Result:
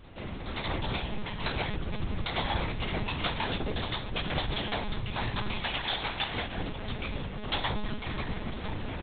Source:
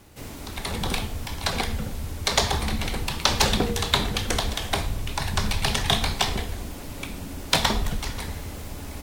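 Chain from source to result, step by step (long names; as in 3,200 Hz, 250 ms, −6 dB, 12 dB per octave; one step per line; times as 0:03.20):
0:05.59–0:06.57: low-shelf EQ 260 Hz −12 dB
downward compressor 6 to 1, threshold −28 dBFS, peak gain reduction 12.5 dB
chorus effect 2.4 Hz, delay 16 ms, depth 4 ms
double-tracking delay 39 ms −13.5 dB
repeating echo 991 ms, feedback 30%, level −14 dB
one-pitch LPC vocoder at 8 kHz 210 Hz
amplitude modulation by smooth noise, depth 60%
level +7 dB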